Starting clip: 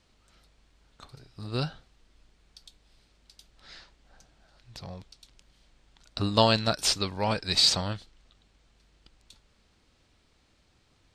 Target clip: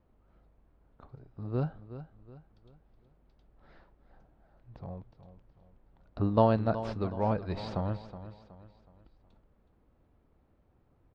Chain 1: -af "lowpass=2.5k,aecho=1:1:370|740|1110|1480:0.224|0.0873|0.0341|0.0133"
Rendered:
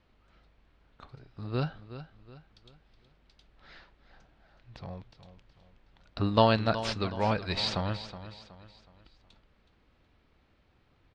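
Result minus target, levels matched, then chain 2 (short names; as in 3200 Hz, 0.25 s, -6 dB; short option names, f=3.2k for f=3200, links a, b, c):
2000 Hz band +9.0 dB
-af "lowpass=900,aecho=1:1:370|740|1110|1480:0.224|0.0873|0.0341|0.0133"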